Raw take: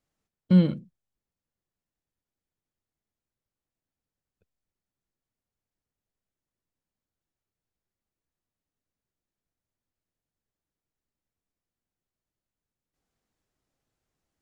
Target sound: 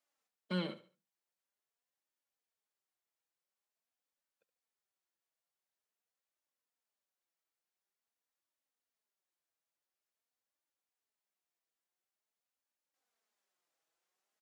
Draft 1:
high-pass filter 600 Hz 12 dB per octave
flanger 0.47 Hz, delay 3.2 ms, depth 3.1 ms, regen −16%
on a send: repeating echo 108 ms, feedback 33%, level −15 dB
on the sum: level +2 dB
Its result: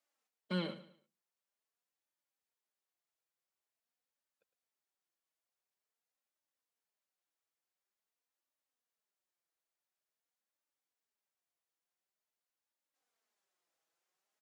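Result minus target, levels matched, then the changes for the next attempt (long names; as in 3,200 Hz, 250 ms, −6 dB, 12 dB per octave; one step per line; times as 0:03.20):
echo 37 ms late
change: repeating echo 71 ms, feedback 33%, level −15 dB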